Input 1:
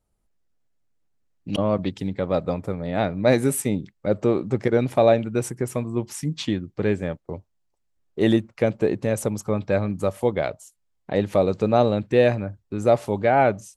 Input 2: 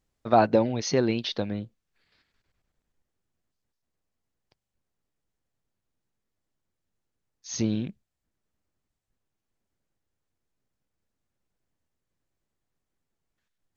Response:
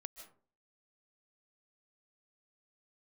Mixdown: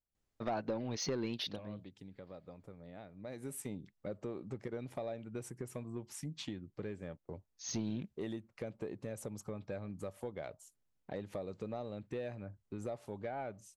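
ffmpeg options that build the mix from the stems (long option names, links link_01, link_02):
-filter_complex "[0:a]acompressor=threshold=-26dB:ratio=5,volume=-12dB,afade=type=in:start_time=3.19:duration=0.36:silence=0.354813,asplit=2[link_01][link_02];[1:a]acompressor=threshold=-23dB:ratio=16,adelay=150,volume=-6.5dB[link_03];[link_02]apad=whole_len=613827[link_04];[link_03][link_04]sidechaincompress=threshold=-54dB:ratio=8:attack=16:release=195[link_05];[link_01][link_05]amix=inputs=2:normalize=0,asoftclip=type=tanh:threshold=-28.5dB"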